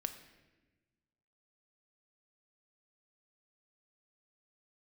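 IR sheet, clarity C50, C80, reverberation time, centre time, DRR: 10.5 dB, 12.5 dB, 1.2 s, 13 ms, 8.0 dB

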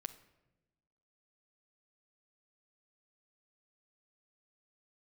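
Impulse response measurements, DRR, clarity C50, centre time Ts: 9.5 dB, 13.5 dB, 6 ms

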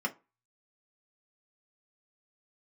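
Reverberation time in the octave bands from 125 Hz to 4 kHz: 0.30, 0.25, 0.25, 0.30, 0.20, 0.15 s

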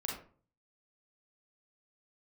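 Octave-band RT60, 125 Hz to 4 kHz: 0.70, 0.55, 0.45, 0.40, 0.35, 0.25 s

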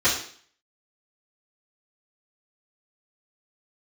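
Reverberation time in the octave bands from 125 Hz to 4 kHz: 0.50, 0.55, 0.50, 0.50, 0.50, 0.55 s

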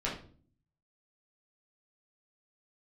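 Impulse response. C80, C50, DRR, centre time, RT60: 11.5 dB, 6.0 dB, -6.0 dB, 31 ms, 0.45 s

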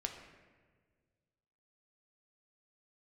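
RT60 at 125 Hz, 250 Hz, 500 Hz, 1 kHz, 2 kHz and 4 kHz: 2.4, 2.0, 1.8, 1.3, 1.4, 0.95 s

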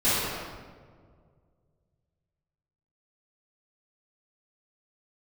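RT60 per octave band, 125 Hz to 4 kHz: 3.0, 2.2, 2.1, 1.6, 1.2, 1.0 s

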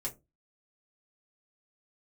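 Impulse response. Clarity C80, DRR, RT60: 25.5 dB, -4.0 dB, 0.20 s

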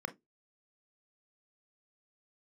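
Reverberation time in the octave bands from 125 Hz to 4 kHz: 0.20, 0.20, 0.20, 0.15, 0.10, 0.10 s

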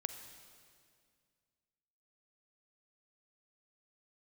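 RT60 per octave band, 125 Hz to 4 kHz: 2.6, 2.4, 2.2, 2.0, 2.0, 1.9 s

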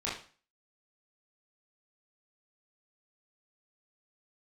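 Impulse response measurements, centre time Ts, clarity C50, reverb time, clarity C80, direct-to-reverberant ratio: 40 ms, 4.5 dB, 0.40 s, 10.5 dB, -8.0 dB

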